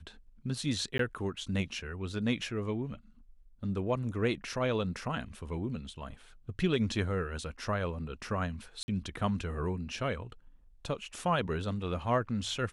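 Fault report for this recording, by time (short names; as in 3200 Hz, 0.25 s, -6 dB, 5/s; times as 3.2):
0.98–0.99 gap 13 ms
8.83–8.88 gap 50 ms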